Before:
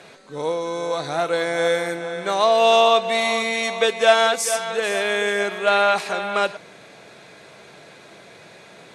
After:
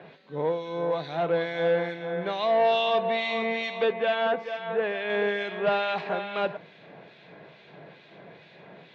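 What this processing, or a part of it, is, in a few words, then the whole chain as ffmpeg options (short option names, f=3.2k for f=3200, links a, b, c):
guitar amplifier with harmonic tremolo: -filter_complex "[0:a]asettb=1/sr,asplit=3[a][b][c];[a]atrim=end=3.924[d];[b]atrim=start=3.92:end=5.1,asetpts=PTS-STARTPTS,afade=t=in:d=0.004:c=qsin,afade=t=out:st=1.176:d=0.004:c=qsin,lowpass=2.5k[e];[c]atrim=start=5.096[f];[d][e]acrossfade=d=0.004:c1=hsin:c2=qsin[g];[g][f]acrossfade=d=0.004:c1=qsin:c2=hsin,acrossover=split=2000[h][i];[h]aeval=exprs='val(0)*(1-0.7/2+0.7/2*cos(2*PI*2.3*n/s))':c=same[j];[i]aeval=exprs='val(0)*(1-0.7/2-0.7/2*cos(2*PI*2.3*n/s))':c=same[k];[j][k]amix=inputs=2:normalize=0,asoftclip=type=tanh:threshold=-17dB,highpass=100,equalizer=f=160:t=q:w=4:g=7,equalizer=f=1.3k:t=q:w=4:g=-7,equalizer=f=2.3k:t=q:w=4:g=-3,lowpass=f=3.4k:w=0.5412,lowpass=f=3.4k:w=1.3066"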